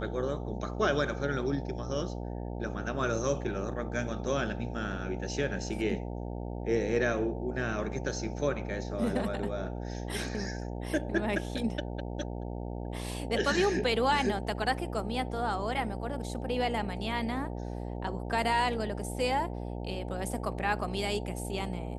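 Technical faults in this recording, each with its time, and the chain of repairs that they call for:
mains buzz 60 Hz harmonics 15 −37 dBFS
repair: hum removal 60 Hz, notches 15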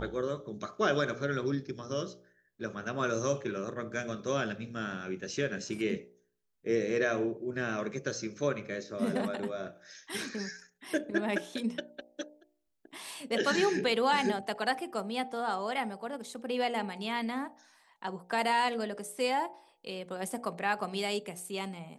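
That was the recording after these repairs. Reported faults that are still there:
none of them is left

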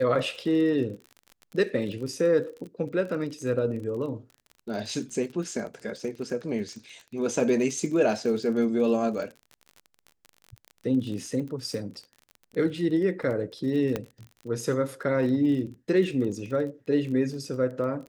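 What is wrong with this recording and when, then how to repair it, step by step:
surface crackle 30 per second −35 dBFS
0:13.96: click −14 dBFS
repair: click removal

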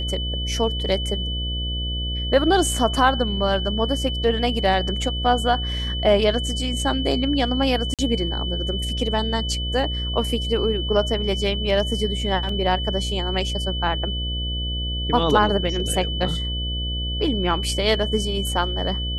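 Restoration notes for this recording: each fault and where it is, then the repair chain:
mains buzz 60 Hz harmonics 11 −27 dBFS
whistle 3,000 Hz −28 dBFS
0:07.94–0:07.99: drop-out 47 ms
0:12.49: drop-out 2.9 ms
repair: notch filter 3,000 Hz, Q 30
hum removal 60 Hz, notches 11
repair the gap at 0:07.94, 47 ms
repair the gap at 0:12.49, 2.9 ms

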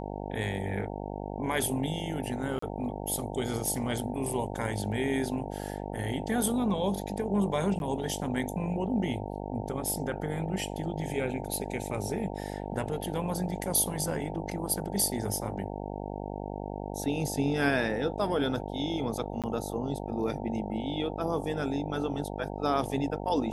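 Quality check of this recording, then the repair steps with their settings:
mains buzz 50 Hz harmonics 18 −37 dBFS
0:02.59–0:02.62: drop-out 34 ms
0:07.79–0:07.80: drop-out 11 ms
0:19.42–0:19.44: drop-out 17 ms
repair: hum removal 50 Hz, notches 18
repair the gap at 0:02.59, 34 ms
repair the gap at 0:07.79, 11 ms
repair the gap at 0:19.42, 17 ms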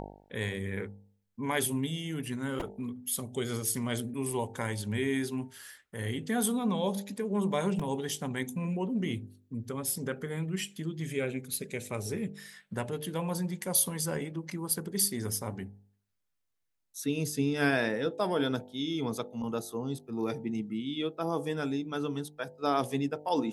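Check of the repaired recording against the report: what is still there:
none of them is left

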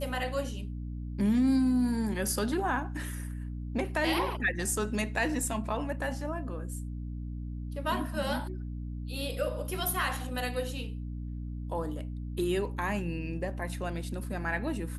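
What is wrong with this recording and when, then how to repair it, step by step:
mains hum 60 Hz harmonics 5 −37 dBFS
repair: hum removal 60 Hz, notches 5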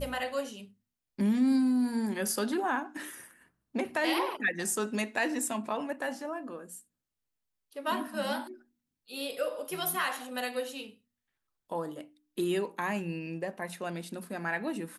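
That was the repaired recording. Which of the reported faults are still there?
none of them is left

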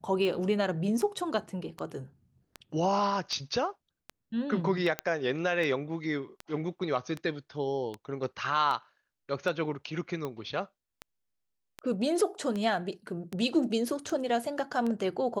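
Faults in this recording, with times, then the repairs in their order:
scratch tick 78 rpm −22 dBFS
0:04.99: click −14 dBFS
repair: click removal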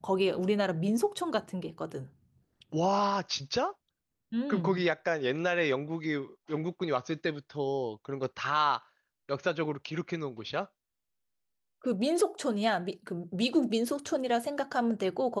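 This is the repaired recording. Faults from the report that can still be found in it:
none of them is left

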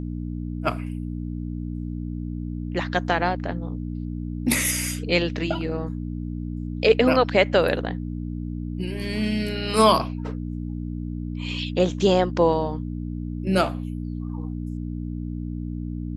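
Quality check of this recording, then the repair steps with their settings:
mains hum 60 Hz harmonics 5 −30 dBFS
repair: hum removal 60 Hz, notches 5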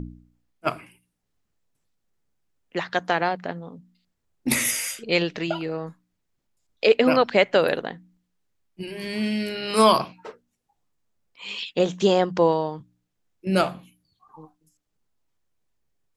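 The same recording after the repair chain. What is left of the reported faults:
none of them is left

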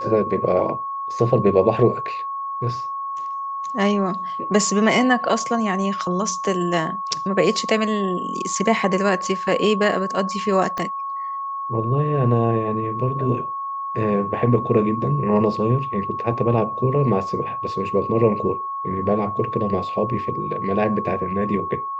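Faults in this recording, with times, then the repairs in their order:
whistle 1,100 Hz −25 dBFS
0:10.78: click −13 dBFS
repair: click removal
notch filter 1,100 Hz, Q 30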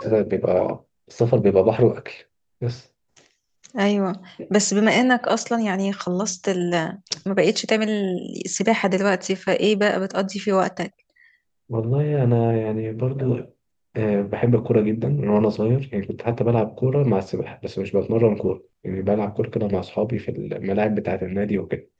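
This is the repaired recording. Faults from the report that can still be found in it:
0:10.78: click

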